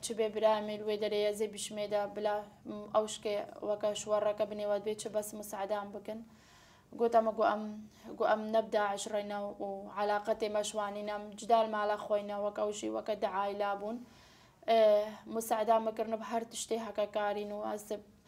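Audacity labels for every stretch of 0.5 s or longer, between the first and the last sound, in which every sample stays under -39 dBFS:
6.180000	6.930000	silence
13.970000	14.680000	silence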